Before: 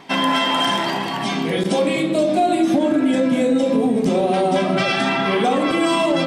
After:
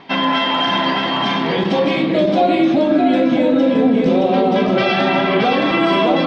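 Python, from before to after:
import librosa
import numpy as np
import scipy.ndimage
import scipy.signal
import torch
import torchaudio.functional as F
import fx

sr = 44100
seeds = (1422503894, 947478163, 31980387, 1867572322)

p1 = scipy.signal.sosfilt(scipy.signal.butter(4, 4500.0, 'lowpass', fs=sr, output='sos'), x)
p2 = p1 + fx.echo_single(p1, sr, ms=621, db=-3.5, dry=0)
y = F.gain(torch.from_numpy(p2), 1.5).numpy()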